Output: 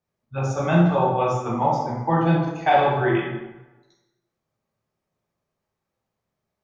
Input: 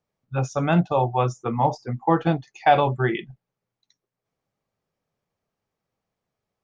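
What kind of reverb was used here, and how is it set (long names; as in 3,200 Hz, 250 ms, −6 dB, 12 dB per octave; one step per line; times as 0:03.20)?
dense smooth reverb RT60 1.1 s, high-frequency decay 0.65×, DRR −4.5 dB
level −4.5 dB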